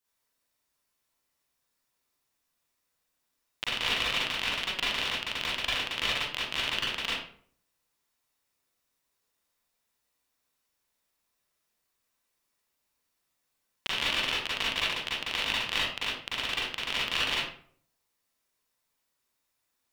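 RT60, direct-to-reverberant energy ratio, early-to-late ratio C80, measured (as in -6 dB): 0.55 s, -8.0 dB, 4.5 dB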